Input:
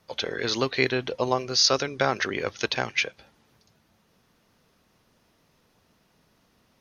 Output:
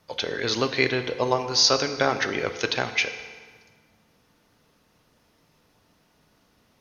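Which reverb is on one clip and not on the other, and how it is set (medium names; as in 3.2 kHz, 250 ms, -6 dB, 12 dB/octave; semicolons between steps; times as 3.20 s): FDN reverb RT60 1.6 s, low-frequency decay 0.75×, high-frequency decay 0.8×, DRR 8 dB; trim +1 dB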